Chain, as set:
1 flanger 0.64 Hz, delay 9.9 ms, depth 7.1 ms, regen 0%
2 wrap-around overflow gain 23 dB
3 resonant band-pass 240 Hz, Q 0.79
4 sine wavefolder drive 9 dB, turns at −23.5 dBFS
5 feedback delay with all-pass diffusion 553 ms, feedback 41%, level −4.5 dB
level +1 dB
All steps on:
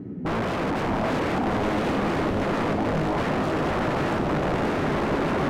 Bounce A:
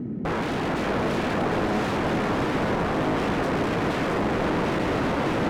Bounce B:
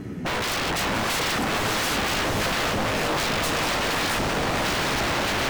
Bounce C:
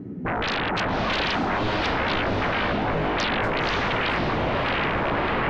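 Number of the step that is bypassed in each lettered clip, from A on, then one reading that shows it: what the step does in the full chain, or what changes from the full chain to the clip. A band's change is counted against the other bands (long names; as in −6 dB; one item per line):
1, 8 kHz band +2.0 dB
3, 8 kHz band +18.0 dB
2, 4 kHz band +10.0 dB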